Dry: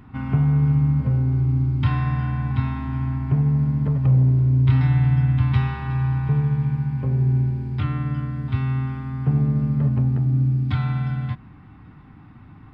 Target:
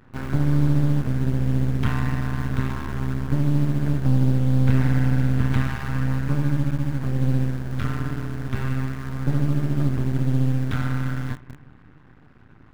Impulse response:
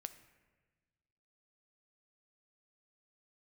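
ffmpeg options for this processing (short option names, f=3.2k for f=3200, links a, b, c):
-filter_complex "[1:a]atrim=start_sample=2205[a];[0:a][a]afir=irnorm=-1:irlink=0,asplit=2[b][c];[c]acrusher=bits=5:mix=0:aa=0.000001,volume=-7.5dB[d];[b][d]amix=inputs=2:normalize=0,equalizer=f=1.6k:w=5.7:g=10.5,aeval=exprs='max(val(0),0)':c=same,volume=2dB"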